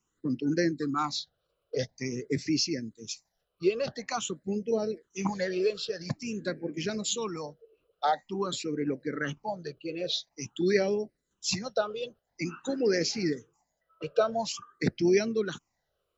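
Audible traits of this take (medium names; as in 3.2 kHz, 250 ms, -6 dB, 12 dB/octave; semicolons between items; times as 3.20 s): phasing stages 8, 0.48 Hz, lowest notch 250–1100 Hz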